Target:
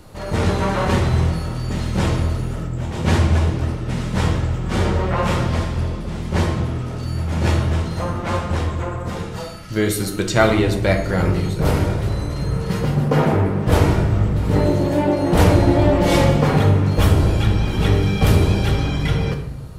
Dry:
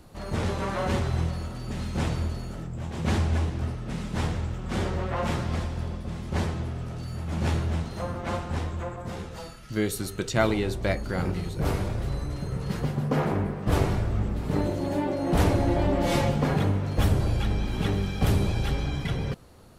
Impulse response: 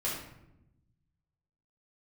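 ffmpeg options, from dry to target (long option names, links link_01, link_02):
-filter_complex "[0:a]asplit=2[link_01][link_02];[1:a]atrim=start_sample=2205,lowshelf=frequency=130:gain=-5.5[link_03];[link_02][link_03]afir=irnorm=-1:irlink=0,volume=-6dB[link_04];[link_01][link_04]amix=inputs=2:normalize=0,volume=5dB"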